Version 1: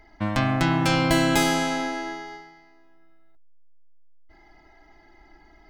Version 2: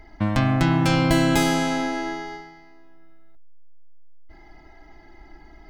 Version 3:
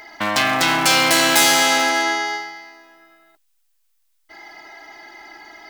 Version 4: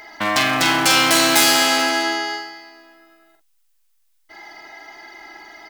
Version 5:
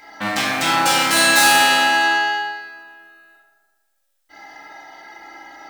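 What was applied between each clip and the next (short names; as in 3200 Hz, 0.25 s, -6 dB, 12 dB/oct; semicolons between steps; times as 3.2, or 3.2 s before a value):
low shelf 330 Hz +6 dB; in parallel at -0.5 dB: compressor, threshold -27 dBFS, peak gain reduction 13 dB; on the sum: gain -3 dB
overdrive pedal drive 19 dB, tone 3500 Hz, clips at -4.5 dBFS; hard clip -13 dBFS, distortion -15 dB; RIAA curve recording
doubler 45 ms -7 dB
reverb RT60 1.4 s, pre-delay 3 ms, DRR -7 dB; gain -6.5 dB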